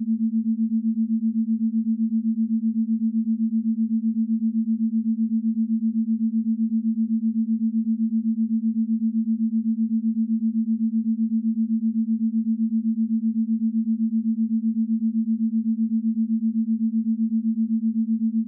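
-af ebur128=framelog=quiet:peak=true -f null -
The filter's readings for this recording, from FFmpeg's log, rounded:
Integrated loudness:
  I:         -23.5 LUFS
  Threshold: -33.5 LUFS
Loudness range:
  LRA:         0.1 LU
  Threshold: -43.5 LUFS
  LRA low:   -23.5 LUFS
  LRA high:  -23.4 LUFS
True peak:
  Peak:      -16.5 dBFS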